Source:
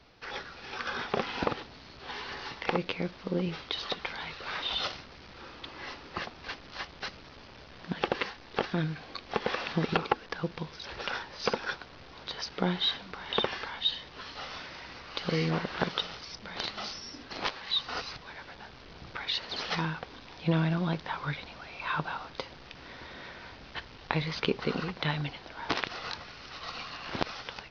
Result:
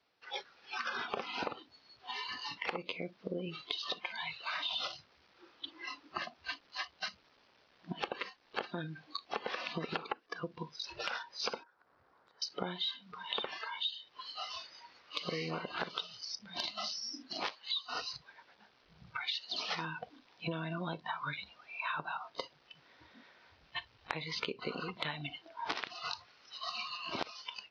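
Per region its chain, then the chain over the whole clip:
11.63–12.42 resonant high shelf 2000 Hz -11.5 dB, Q 1.5 + compressor 5:1, threshold -47 dBFS
whole clip: spectral noise reduction 19 dB; HPF 440 Hz 6 dB/oct; compressor 5:1, threshold -39 dBFS; gain +4 dB

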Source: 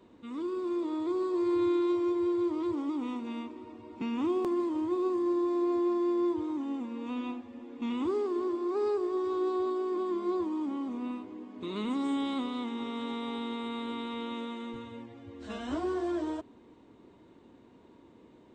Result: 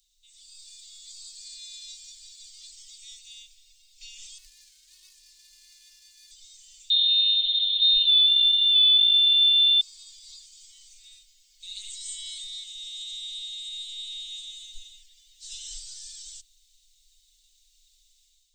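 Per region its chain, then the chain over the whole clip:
4.38–6.31 median filter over 41 samples + HPF 56 Hz + high shelf 3100 Hz -10.5 dB
6.9–9.81 inverted band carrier 3900 Hz + fast leveller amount 70%
whole clip: inverse Chebyshev band-stop 120–980 Hz, stop band 80 dB; comb 4.6 ms, depth 59%; AGC gain up to 8 dB; gain +12.5 dB

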